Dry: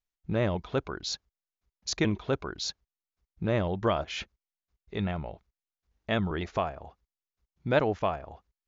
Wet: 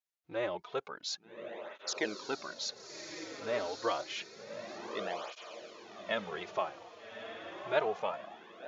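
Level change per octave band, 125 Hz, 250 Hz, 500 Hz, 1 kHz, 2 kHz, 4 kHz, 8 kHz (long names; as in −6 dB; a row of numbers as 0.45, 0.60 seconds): −23.5 dB, −13.0 dB, −5.0 dB, −4.0 dB, −3.0 dB, −3.5 dB, can't be measured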